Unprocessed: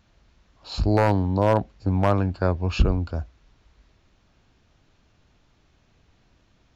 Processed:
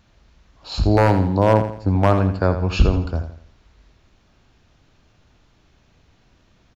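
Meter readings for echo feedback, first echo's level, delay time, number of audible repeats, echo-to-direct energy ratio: 39%, −10.0 dB, 83 ms, 4, −9.5 dB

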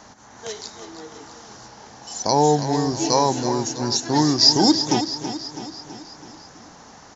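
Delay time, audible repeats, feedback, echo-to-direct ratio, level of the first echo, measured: 328 ms, 5, 56%, −9.0 dB, −10.5 dB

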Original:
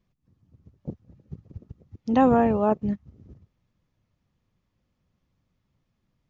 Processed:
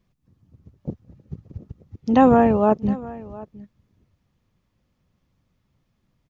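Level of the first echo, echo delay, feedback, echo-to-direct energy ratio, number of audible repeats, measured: −19.5 dB, 711 ms, repeats not evenly spaced, −19.5 dB, 1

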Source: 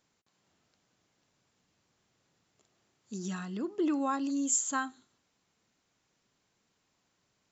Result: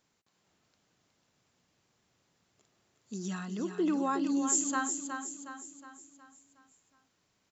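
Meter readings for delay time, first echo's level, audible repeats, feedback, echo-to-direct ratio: 365 ms, −7.0 dB, 5, 48%, −6.0 dB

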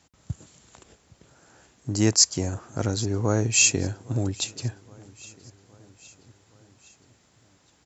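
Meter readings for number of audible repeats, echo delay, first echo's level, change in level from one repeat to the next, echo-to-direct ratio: 3, 815 ms, −23.0 dB, −4.5 dB, −21.5 dB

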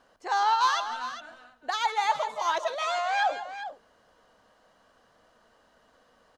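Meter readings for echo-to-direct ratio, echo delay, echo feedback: −9.5 dB, 164 ms, repeats not evenly spaced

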